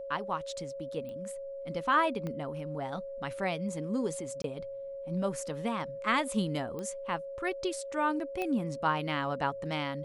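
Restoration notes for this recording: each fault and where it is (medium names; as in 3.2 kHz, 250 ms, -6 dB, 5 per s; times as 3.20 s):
whine 550 Hz -38 dBFS
1.09 s: pop -32 dBFS
2.27 s: pop -25 dBFS
4.42–4.44 s: dropout 22 ms
6.79 s: pop -26 dBFS
8.42 s: pop -21 dBFS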